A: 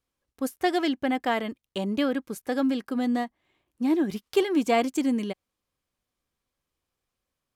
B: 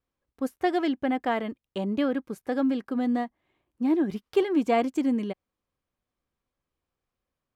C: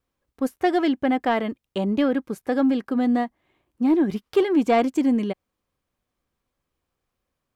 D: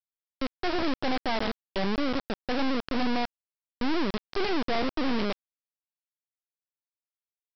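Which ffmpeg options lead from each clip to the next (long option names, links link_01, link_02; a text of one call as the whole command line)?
ffmpeg -i in.wav -af "highshelf=frequency=3300:gain=-12" out.wav
ffmpeg -i in.wav -af "asoftclip=type=tanh:threshold=-15dB,volume=5.5dB" out.wav
ffmpeg -i in.wav -af "aecho=1:1:362:0.168,aeval=exprs='(tanh(12.6*val(0)+0.8)-tanh(0.8))/12.6':channel_layout=same,aresample=11025,acrusher=bits=3:dc=4:mix=0:aa=0.000001,aresample=44100,volume=8dB" out.wav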